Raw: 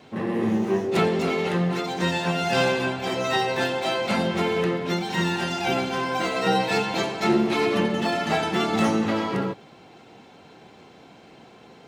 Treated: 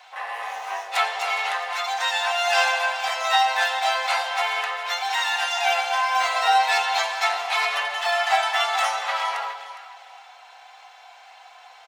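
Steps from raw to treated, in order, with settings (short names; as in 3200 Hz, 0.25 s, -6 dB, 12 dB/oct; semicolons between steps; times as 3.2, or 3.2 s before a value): hum 50 Hz, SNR 15 dB; elliptic high-pass 720 Hz, stop band 60 dB; comb 4 ms, depth 33%; on a send: echo with dull and thin repeats by turns 0.205 s, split 930 Hz, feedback 51%, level -8 dB; on the sum: gain +5 dB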